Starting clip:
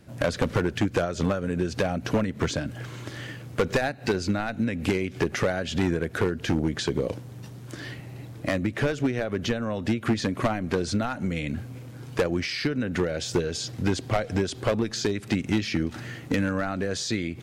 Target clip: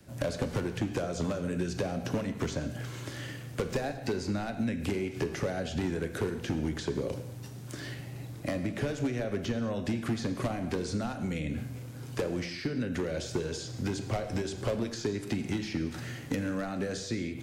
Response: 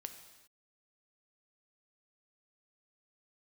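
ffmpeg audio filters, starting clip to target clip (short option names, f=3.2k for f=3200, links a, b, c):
-filter_complex "[0:a]acrossover=split=880|2100[a][b][c];[a]acompressor=threshold=-25dB:ratio=4[d];[b]acompressor=threshold=-45dB:ratio=4[e];[c]acompressor=threshold=-43dB:ratio=4[f];[d][e][f]amix=inputs=3:normalize=0[g];[1:a]atrim=start_sample=2205,afade=t=out:st=0.28:d=0.01,atrim=end_sample=12789[h];[g][h]afir=irnorm=-1:irlink=0,acrossover=split=210|570|5000[i][j][k][l];[l]acontrast=32[m];[i][j][k][m]amix=inputs=4:normalize=0,volume=1.5dB"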